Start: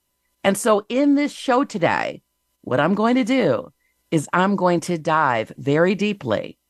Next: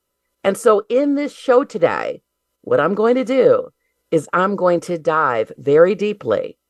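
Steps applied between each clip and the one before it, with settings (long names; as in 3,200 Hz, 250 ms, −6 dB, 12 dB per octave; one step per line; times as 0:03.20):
hollow resonant body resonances 470/1,300 Hz, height 15 dB, ringing for 30 ms
level −4 dB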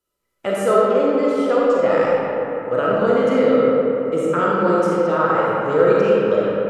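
convolution reverb RT60 3.6 s, pre-delay 5 ms, DRR −6 dB
level −7.5 dB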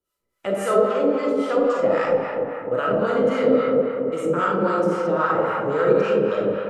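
two-band tremolo in antiphase 3.7 Hz, depth 70%, crossover 760 Hz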